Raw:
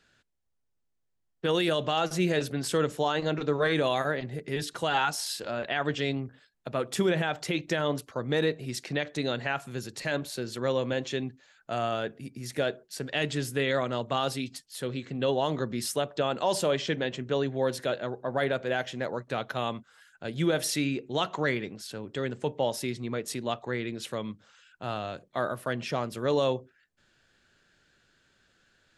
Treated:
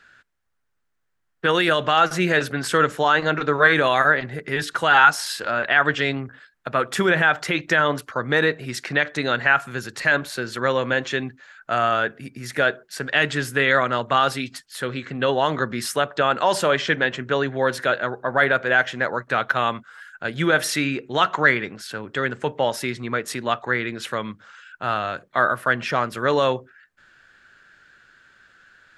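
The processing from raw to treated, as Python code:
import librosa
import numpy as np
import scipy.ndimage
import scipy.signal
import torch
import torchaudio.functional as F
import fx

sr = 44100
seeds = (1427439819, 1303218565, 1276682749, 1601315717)

y = fx.peak_eq(x, sr, hz=1500.0, db=13.5, octaves=1.3)
y = y * librosa.db_to_amplitude(3.5)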